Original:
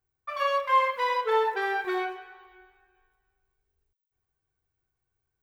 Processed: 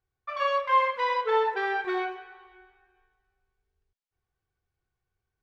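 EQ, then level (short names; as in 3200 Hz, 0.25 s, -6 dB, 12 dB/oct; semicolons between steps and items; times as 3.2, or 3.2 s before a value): LPF 5200 Hz 12 dB/oct; 0.0 dB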